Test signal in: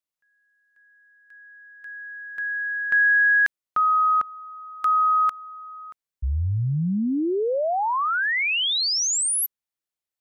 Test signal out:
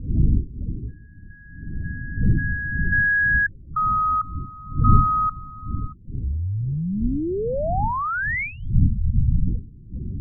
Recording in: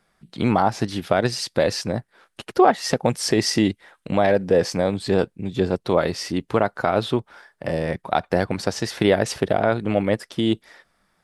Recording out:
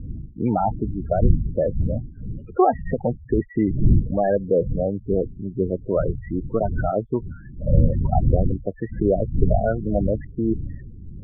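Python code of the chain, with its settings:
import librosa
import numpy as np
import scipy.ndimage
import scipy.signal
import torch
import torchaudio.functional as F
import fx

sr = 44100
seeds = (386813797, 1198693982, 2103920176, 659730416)

y = fx.dmg_wind(x, sr, seeds[0], corner_hz=110.0, level_db=-22.0)
y = fx.spec_topn(y, sr, count=16)
y = scipy.signal.sosfilt(scipy.signal.butter(16, 2300.0, 'lowpass', fs=sr, output='sos'), y)
y = y * librosa.db_to_amplitude(-1.5)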